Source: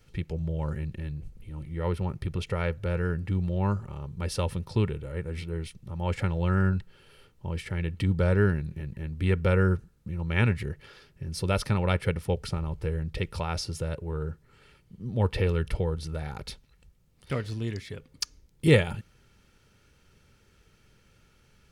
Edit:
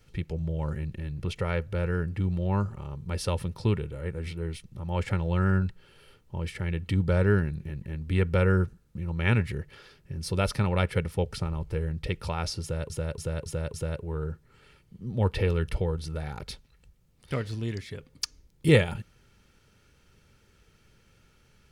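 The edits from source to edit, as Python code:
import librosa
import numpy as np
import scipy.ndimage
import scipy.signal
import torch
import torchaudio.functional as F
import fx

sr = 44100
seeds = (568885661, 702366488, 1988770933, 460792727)

y = fx.edit(x, sr, fx.cut(start_s=1.19, length_s=1.11),
    fx.repeat(start_s=13.73, length_s=0.28, count=5), tone=tone)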